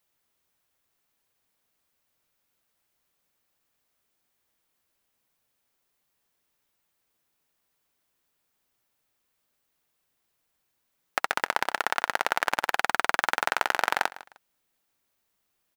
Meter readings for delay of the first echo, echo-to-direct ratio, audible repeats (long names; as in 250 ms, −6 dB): 153 ms, −17.5 dB, 2